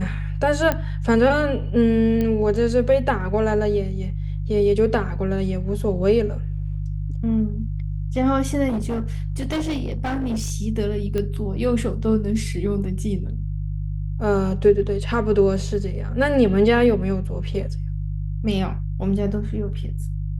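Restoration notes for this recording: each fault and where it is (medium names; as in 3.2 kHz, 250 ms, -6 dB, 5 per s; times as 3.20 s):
hum 50 Hz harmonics 3 -26 dBFS
0.72 s: pop -8 dBFS
2.21 s: pop -13 dBFS
8.68–10.52 s: clipped -20.5 dBFS
11.18 s: pop -14 dBFS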